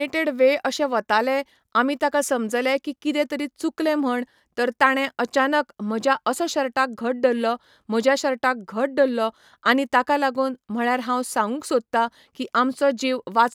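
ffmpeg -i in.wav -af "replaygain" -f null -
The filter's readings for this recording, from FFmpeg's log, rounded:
track_gain = +2.3 dB
track_peak = 0.504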